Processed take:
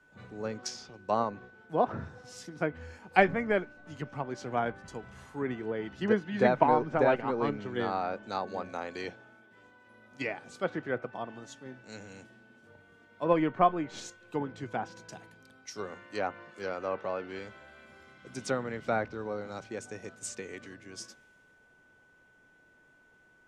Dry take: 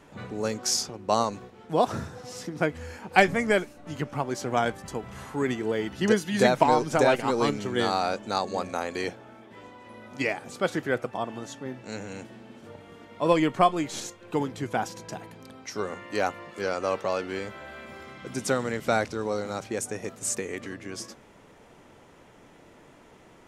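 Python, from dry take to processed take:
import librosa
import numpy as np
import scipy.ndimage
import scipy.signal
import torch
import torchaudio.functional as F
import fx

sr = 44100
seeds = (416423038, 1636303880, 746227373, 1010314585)

y = x + 10.0 ** (-46.0 / 20.0) * np.sin(2.0 * np.pi * 1500.0 * np.arange(len(x)) / sr)
y = fx.env_lowpass_down(y, sr, base_hz=2200.0, full_db=-22.5)
y = fx.band_widen(y, sr, depth_pct=40)
y = y * 10.0 ** (-6.0 / 20.0)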